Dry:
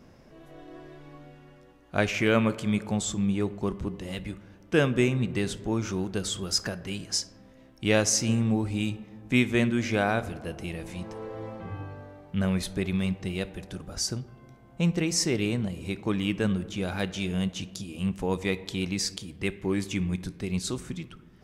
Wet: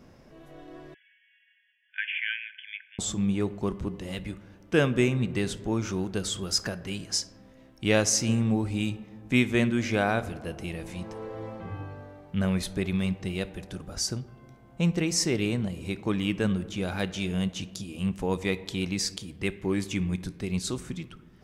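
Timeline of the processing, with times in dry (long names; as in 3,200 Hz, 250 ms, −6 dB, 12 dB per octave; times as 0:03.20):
0:00.94–0:02.99: linear-phase brick-wall band-pass 1,500–3,500 Hz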